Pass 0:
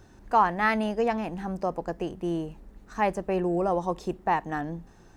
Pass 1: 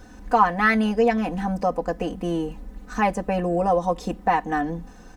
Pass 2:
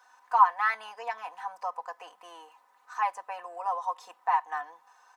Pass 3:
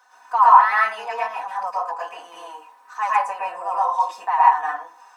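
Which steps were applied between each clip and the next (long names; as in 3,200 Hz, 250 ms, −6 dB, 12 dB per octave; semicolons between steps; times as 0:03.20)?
comb filter 4 ms, depth 100%; in parallel at −1 dB: downward compressor, threshold −30 dBFS, peak gain reduction 16.5 dB
four-pole ladder high-pass 880 Hz, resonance 65%
convolution reverb RT60 0.30 s, pre-delay 102 ms, DRR −7 dB; level +3 dB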